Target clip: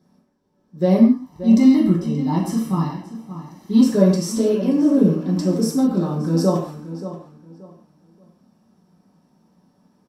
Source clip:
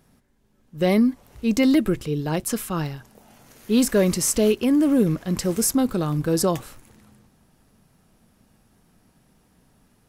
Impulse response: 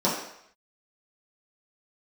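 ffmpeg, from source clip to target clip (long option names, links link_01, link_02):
-filter_complex "[0:a]asettb=1/sr,asplit=3[link_01][link_02][link_03];[link_01]atrim=end=0.984[link_04];[link_02]atrim=start=0.98:end=3.81,asetpts=PTS-STARTPTS,afade=type=in:duration=0.004:curve=qsin,afade=type=out:start_time=2.826:duration=0.004:curve=qsin,aecho=1:1:1:0.7,atrim=end_sample=124803[link_05];[link_03]atrim=start=3.806[link_06];[link_04][link_05]acrossfade=duration=0.004:curve1=hsin:curve2=qsin[link_07];[link_07][link_06]acrossfade=duration=0.004:curve1=qsin:curve2=hsin,asplit=2[link_08][link_09];[link_09]adelay=579,lowpass=frequency=3200:poles=1,volume=-12.5dB,asplit=2[link_10][link_11];[link_11]adelay=579,lowpass=frequency=3200:poles=1,volume=0.25,asplit=2[link_12][link_13];[link_13]adelay=579,lowpass=frequency=3200:poles=1,volume=0.25[link_14];[link_08][link_10][link_12][link_14]amix=inputs=4:normalize=0[link_15];[1:a]atrim=start_sample=2205,afade=type=out:start_time=0.22:duration=0.01,atrim=end_sample=10143[link_16];[link_15][link_16]afir=irnorm=-1:irlink=0,volume=-16.5dB"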